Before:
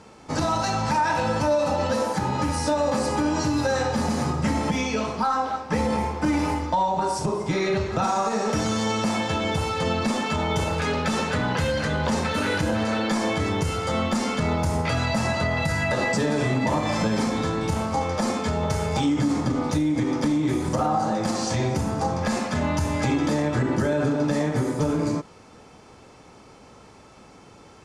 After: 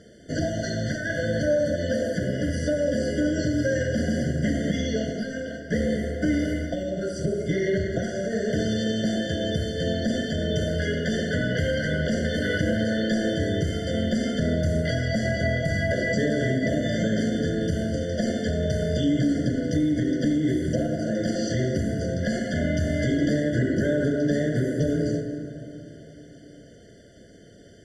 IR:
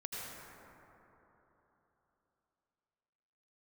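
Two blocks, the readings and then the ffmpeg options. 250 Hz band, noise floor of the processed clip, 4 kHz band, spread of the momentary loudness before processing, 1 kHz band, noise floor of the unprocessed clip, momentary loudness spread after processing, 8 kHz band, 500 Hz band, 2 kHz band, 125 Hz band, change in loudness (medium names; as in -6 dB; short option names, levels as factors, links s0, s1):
+0.5 dB, -48 dBFS, -2.5 dB, 3 LU, -17.0 dB, -49 dBFS, 5 LU, -5.5 dB, 0.0 dB, -1.0 dB, +0.5 dB, -1.0 dB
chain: -filter_complex "[0:a]asplit=2[s0][s1];[1:a]atrim=start_sample=2205[s2];[s1][s2]afir=irnorm=-1:irlink=0,volume=0.501[s3];[s0][s3]amix=inputs=2:normalize=0,acrossover=split=6300[s4][s5];[s5]acompressor=threshold=0.00447:ratio=4:attack=1:release=60[s6];[s4][s6]amix=inputs=2:normalize=0,afftfilt=real='re*eq(mod(floor(b*sr/1024/710),2),0)':imag='im*eq(mod(floor(b*sr/1024/710),2),0)':win_size=1024:overlap=0.75,volume=0.75"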